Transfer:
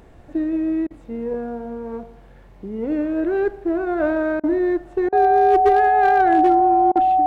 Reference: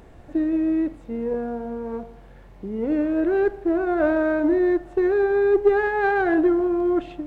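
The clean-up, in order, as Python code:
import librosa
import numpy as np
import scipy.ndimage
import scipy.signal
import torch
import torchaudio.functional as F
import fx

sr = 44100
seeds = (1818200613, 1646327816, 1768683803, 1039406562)

y = fx.fix_declip(x, sr, threshold_db=-8.5)
y = fx.notch(y, sr, hz=750.0, q=30.0)
y = fx.fix_interpolate(y, sr, at_s=(0.87, 4.4, 5.09, 6.92), length_ms=34.0)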